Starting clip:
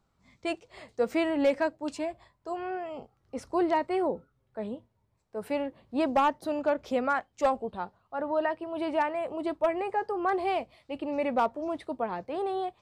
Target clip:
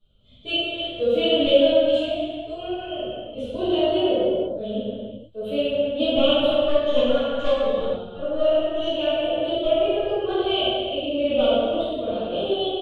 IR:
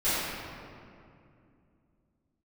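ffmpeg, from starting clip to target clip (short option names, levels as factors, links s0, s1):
-filter_complex "[0:a]firequalizer=gain_entry='entry(110,0);entry(160,-9);entry(350,-10);entry(580,-3);entry(900,-27);entry(1300,-16);entry(2000,-25);entry(3100,12);entry(5200,-23);entry(10000,-16)':delay=0.05:min_phase=1,asettb=1/sr,asplit=3[s0][s1][s2];[s0]atrim=end=6.384[s3];[s1]atrim=start=6.38:end=8.95,asetpts=PTS-STARTPTS,afade=t=in:d=0.004:c=qsin,afade=t=out:st=2.566:d=0.004:c=qsin,aeval=exprs='(tanh(15.8*val(0)+0.4)-tanh(0.4))/15.8':c=same[s4];[s2]atrim=start=8.946[s5];[s3][s4]acrossfade=d=0.004:c1=hsin:c2=qsin[s6];[s6][s5]acrossfade=d=0.004:c1=qsin:c2=hsin[s7];[1:a]atrim=start_sample=2205,afade=t=out:st=0.4:d=0.01,atrim=end_sample=18081,asetrate=30429,aresample=44100[s8];[s7][s8]afir=irnorm=-1:irlink=0"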